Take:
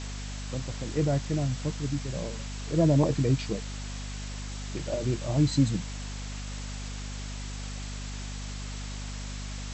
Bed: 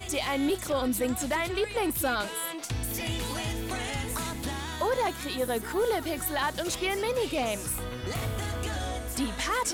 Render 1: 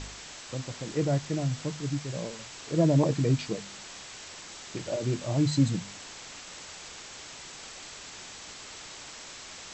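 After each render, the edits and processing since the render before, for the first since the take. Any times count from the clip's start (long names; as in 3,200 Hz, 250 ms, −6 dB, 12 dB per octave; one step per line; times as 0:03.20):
hum removal 50 Hz, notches 5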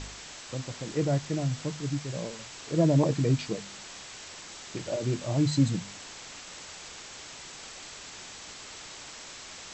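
no processing that can be heard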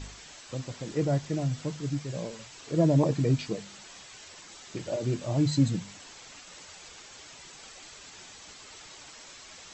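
broadband denoise 7 dB, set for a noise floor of −45 dBFS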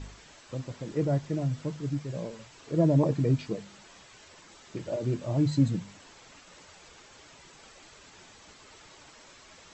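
high-shelf EQ 2,300 Hz −8.5 dB
notch filter 750 Hz, Q 21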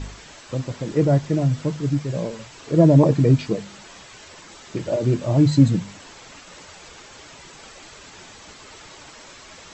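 level +9.5 dB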